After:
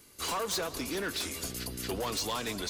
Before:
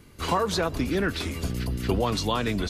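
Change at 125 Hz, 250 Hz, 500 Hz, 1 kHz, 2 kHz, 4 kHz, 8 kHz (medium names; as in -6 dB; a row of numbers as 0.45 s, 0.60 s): -15.0 dB, -11.0 dB, -8.5 dB, -8.0 dB, -6.0 dB, -2.5 dB, +3.0 dB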